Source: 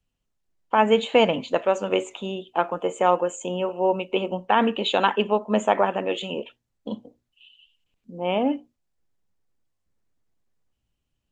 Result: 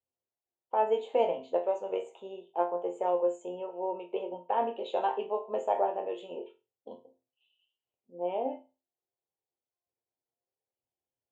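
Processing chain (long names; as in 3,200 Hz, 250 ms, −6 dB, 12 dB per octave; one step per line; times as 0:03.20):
high-pass filter 63 Hz
flat-topped bell 580 Hz +14.5 dB
resonators tuned to a chord F2 sus4, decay 0.29 s
level −9 dB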